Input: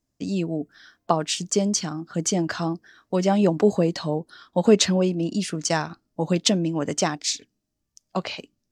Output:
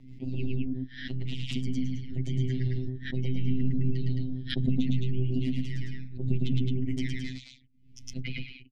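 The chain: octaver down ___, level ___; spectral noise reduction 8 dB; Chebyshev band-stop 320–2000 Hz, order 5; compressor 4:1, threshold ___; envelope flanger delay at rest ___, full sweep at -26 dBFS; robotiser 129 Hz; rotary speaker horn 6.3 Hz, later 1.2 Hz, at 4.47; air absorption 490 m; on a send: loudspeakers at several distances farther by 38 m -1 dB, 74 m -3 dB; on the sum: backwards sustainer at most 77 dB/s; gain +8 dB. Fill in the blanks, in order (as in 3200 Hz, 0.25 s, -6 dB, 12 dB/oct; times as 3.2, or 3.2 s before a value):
2 oct, +3 dB, -27 dBFS, 10.7 ms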